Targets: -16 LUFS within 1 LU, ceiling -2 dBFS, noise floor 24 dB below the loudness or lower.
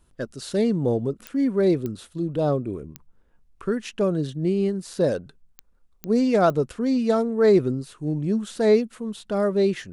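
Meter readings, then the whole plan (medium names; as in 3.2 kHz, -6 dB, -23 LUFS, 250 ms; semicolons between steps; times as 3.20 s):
clicks found 6; loudness -23.5 LUFS; peak level -8.5 dBFS; loudness target -16.0 LUFS
-> de-click; trim +7.5 dB; peak limiter -2 dBFS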